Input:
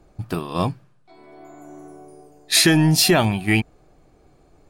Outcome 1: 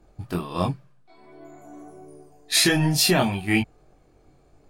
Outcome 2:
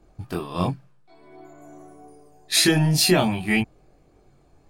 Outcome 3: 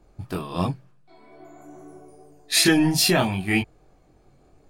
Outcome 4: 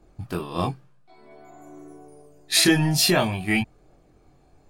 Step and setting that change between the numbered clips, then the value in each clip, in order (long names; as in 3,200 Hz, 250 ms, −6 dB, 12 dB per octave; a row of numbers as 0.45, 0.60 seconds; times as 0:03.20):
multi-voice chorus, speed: 1.4, 0.72, 2.8, 0.38 Hertz